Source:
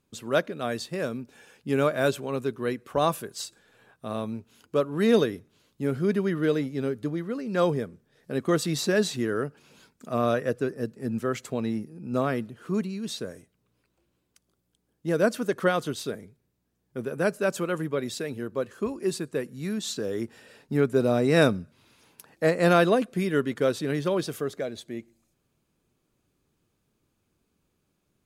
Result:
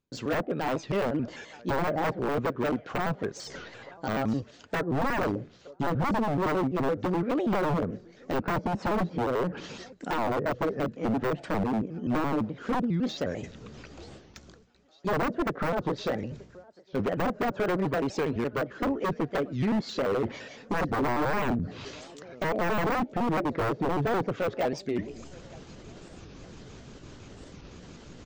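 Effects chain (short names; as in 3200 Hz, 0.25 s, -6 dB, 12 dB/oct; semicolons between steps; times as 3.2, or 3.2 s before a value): trilling pitch shifter +3.5 st, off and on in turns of 85 ms; downsampling 16000 Hz; in parallel at +0.5 dB: limiter -16.5 dBFS, peak gain reduction 9.5 dB; on the sum: low shelf 62 Hz +5.5 dB; treble ducked by the level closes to 580 Hz, closed at -17 dBFS; reverse; upward compressor, threshold -28 dBFS; reverse; gate with hold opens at -48 dBFS; thinning echo 0.911 s, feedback 59%, high-pass 620 Hz, level -23 dB; wavefolder -21 dBFS; de-esser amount 100%; record warp 45 rpm, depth 250 cents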